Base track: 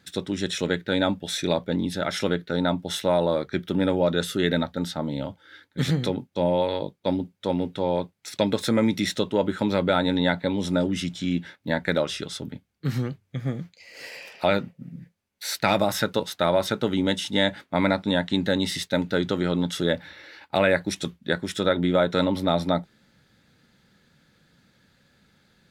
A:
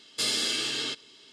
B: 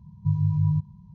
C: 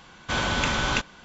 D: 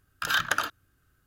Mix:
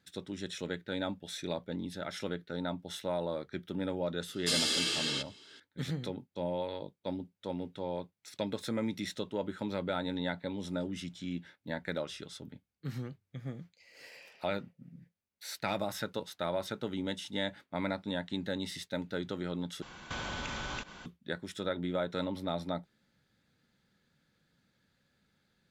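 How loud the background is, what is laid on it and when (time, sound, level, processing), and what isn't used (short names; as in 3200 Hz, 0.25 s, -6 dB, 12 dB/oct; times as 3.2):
base track -12.5 dB
4.28 add A -2.5 dB
19.82 replace with C -0.5 dB + compressor 10:1, threshold -34 dBFS
not used: B, D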